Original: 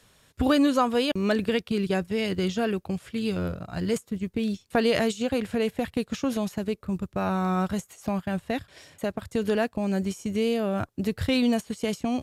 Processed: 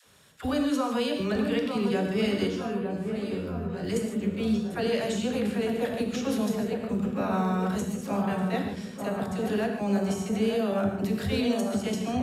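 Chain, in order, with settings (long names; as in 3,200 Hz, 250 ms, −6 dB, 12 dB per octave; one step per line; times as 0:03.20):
high-pass filter 60 Hz
mains-hum notches 60/120/180/240 Hz
brickwall limiter −21.5 dBFS, peak gain reduction 11 dB
all-pass dispersion lows, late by 50 ms, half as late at 550 Hz
0:02.47–0:03.84: tuned comb filter 87 Hz, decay 0.22 s, harmonics all, mix 100%
delay with a low-pass on its return 903 ms, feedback 57%, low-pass 1,400 Hz, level −5.5 dB
reverb whose tail is shaped and stops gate 180 ms flat, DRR 3 dB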